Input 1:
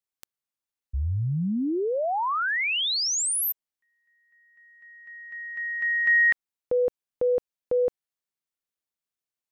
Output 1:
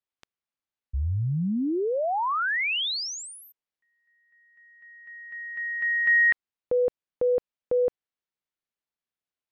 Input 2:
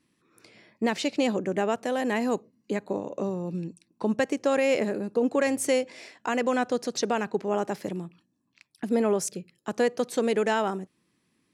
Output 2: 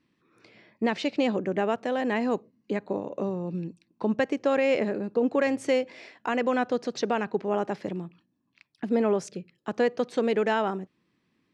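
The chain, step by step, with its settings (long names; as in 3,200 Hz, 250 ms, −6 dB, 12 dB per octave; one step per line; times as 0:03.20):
low-pass filter 4,000 Hz 12 dB per octave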